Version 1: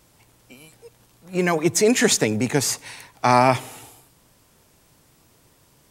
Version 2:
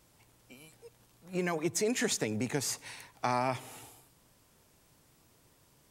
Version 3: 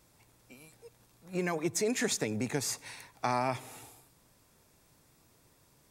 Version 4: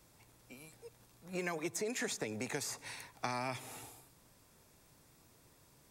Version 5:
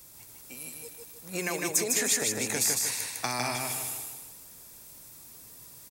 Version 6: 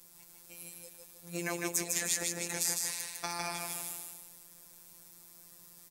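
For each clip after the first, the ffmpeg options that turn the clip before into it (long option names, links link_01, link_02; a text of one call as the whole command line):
ffmpeg -i in.wav -af "acompressor=threshold=-24dB:ratio=2,volume=-7.5dB" out.wav
ffmpeg -i in.wav -af "bandreject=frequency=3000:width=12" out.wav
ffmpeg -i in.wav -filter_complex "[0:a]acrossover=split=410|1700[link_01][link_02][link_03];[link_01]acompressor=threshold=-44dB:ratio=4[link_04];[link_02]acompressor=threshold=-40dB:ratio=4[link_05];[link_03]acompressor=threshold=-40dB:ratio=4[link_06];[link_04][link_05][link_06]amix=inputs=3:normalize=0" out.wav
ffmpeg -i in.wav -af "aemphasis=mode=production:type=75kf,aecho=1:1:154|308|462|616|770:0.708|0.297|0.125|0.0525|0.022,volume=4dB" out.wav
ffmpeg -i in.wav -af "afftfilt=real='hypot(re,im)*cos(PI*b)':imag='0':win_size=1024:overlap=0.75,volume=-2.5dB" out.wav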